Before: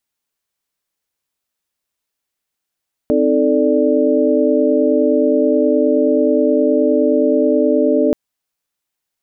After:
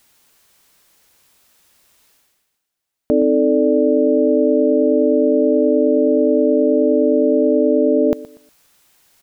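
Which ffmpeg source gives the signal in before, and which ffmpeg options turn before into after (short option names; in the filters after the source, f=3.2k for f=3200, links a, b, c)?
-f lavfi -i "aevalsrc='0.15*(sin(2*PI*261.63*t)+sin(2*PI*311.13*t)+sin(2*PI*440*t)+sin(2*PI*587.33*t))':d=5.03:s=44100"
-af "areverse,acompressor=mode=upward:threshold=-37dB:ratio=2.5,areverse,aecho=1:1:120|240|360:0.133|0.0373|0.0105"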